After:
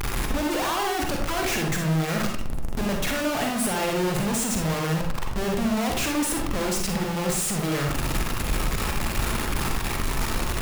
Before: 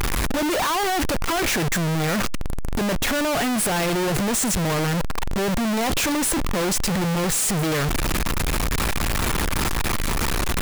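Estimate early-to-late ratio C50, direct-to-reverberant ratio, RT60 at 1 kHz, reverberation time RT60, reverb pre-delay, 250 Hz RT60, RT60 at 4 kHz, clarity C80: 2.5 dB, 0.5 dB, 0.50 s, 0.55 s, 40 ms, 0.60 s, 0.35 s, 8.0 dB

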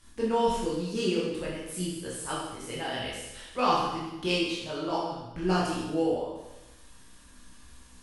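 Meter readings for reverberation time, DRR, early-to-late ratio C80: 1.0 s, -6.5 dB, 3.0 dB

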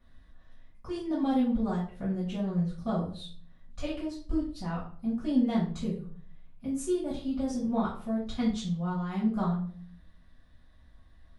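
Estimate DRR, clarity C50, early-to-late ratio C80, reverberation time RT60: -9.5 dB, 5.5 dB, 10.5 dB, 0.45 s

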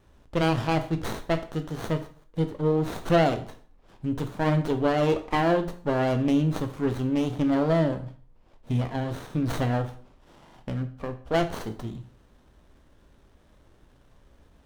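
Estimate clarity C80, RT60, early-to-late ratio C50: 17.0 dB, 0.45 s, 12.5 dB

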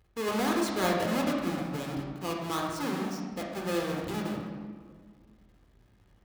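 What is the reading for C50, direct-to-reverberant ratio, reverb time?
2.0 dB, -1.0 dB, 1.8 s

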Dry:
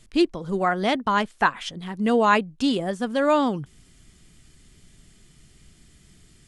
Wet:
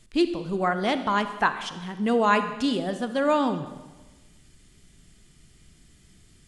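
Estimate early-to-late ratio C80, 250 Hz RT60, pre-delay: 12.5 dB, 1.3 s, 34 ms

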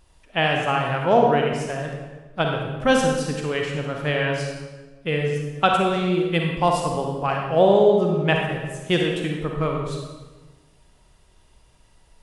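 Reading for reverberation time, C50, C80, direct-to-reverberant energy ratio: 1.3 s, 1.5 dB, 4.0 dB, 0.5 dB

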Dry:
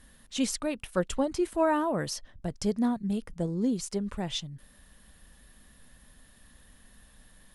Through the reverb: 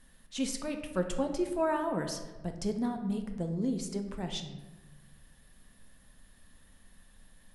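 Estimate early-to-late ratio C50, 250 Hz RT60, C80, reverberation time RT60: 8.0 dB, 1.7 s, 10.0 dB, 1.2 s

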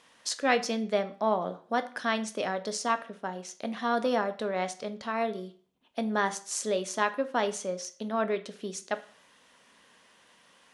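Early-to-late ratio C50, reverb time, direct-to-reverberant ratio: 15.5 dB, 0.45 s, 10.0 dB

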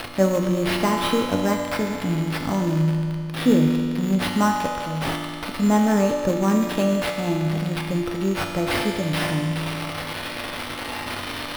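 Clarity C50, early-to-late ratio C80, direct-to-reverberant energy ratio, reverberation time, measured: 3.0 dB, 4.0 dB, 1.0 dB, 2.4 s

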